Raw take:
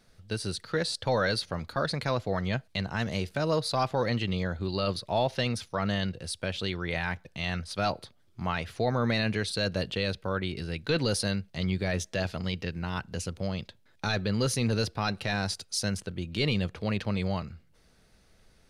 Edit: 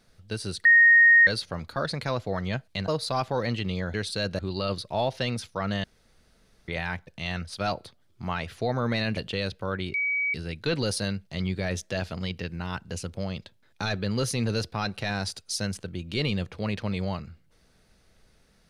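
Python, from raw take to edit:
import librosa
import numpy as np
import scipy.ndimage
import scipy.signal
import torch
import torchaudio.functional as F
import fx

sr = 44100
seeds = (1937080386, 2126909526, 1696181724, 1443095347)

y = fx.edit(x, sr, fx.bleep(start_s=0.65, length_s=0.62, hz=1860.0, db=-12.5),
    fx.cut(start_s=2.88, length_s=0.63),
    fx.room_tone_fill(start_s=6.02, length_s=0.84),
    fx.move(start_s=9.35, length_s=0.45, to_s=4.57),
    fx.insert_tone(at_s=10.57, length_s=0.4, hz=2270.0, db=-23.5), tone=tone)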